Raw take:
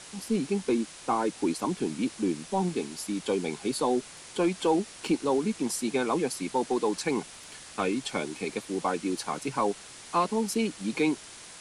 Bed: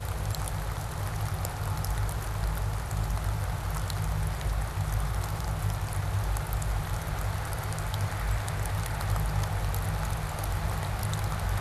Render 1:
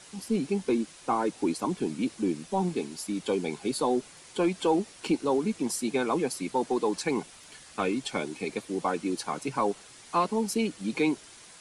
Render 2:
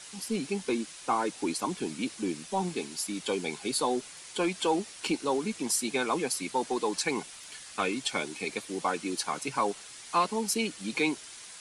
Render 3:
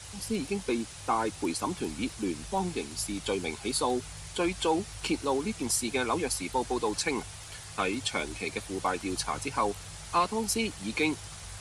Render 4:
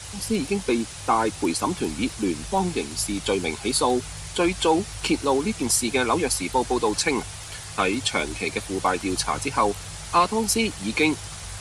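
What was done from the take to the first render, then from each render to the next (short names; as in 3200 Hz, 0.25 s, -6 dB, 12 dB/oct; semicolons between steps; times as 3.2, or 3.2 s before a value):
denoiser 6 dB, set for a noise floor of -47 dBFS
tilt shelf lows -5 dB
add bed -16.5 dB
gain +7 dB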